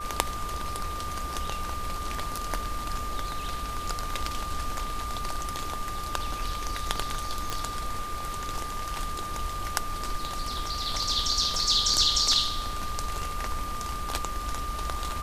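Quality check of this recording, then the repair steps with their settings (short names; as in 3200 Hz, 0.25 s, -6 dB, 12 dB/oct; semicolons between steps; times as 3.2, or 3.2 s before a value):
tone 1200 Hz -34 dBFS
7.5 pop -15 dBFS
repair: de-click; notch 1200 Hz, Q 30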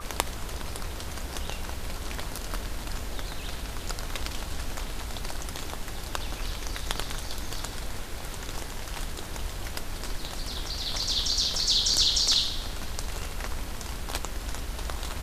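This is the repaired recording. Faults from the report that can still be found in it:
none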